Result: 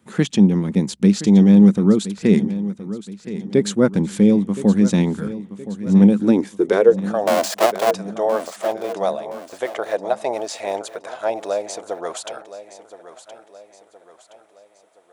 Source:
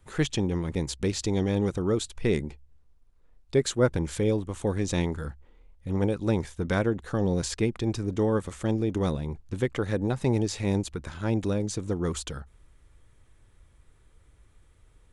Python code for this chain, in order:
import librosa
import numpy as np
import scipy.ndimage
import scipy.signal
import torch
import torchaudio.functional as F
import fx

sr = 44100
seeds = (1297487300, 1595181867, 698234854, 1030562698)

y = fx.halfwave_hold(x, sr, at=(7.27, 7.91))
y = fx.filter_sweep_highpass(y, sr, from_hz=200.0, to_hz=650.0, start_s=6.11, end_s=7.15, q=7.2)
y = fx.echo_feedback(y, sr, ms=1020, feedback_pct=45, wet_db=-14)
y = y * 10.0 ** (3.5 / 20.0)